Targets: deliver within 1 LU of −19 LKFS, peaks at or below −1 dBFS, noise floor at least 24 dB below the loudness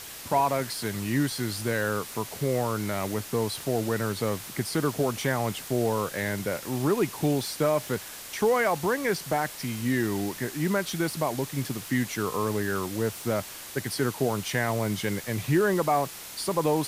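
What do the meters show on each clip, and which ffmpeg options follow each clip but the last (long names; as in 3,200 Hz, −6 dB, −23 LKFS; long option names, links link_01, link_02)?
background noise floor −41 dBFS; target noise floor −52 dBFS; integrated loudness −28.0 LKFS; sample peak −12.5 dBFS; target loudness −19.0 LKFS
→ -af "afftdn=noise_reduction=11:noise_floor=-41"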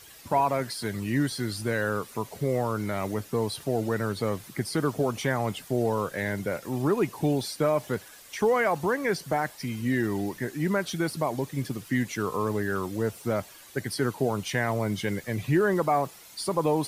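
background noise floor −49 dBFS; target noise floor −53 dBFS
→ -af "afftdn=noise_reduction=6:noise_floor=-49"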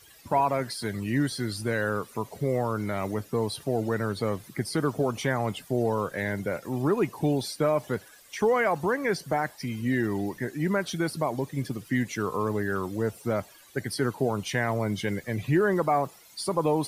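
background noise floor −53 dBFS; integrated loudness −28.5 LKFS; sample peak −12.5 dBFS; target loudness −19.0 LKFS
→ -af "volume=9.5dB"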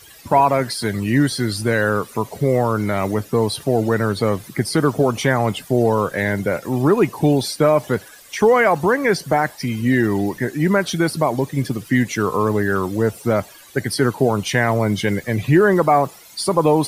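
integrated loudness −19.0 LKFS; sample peak −3.0 dBFS; background noise floor −44 dBFS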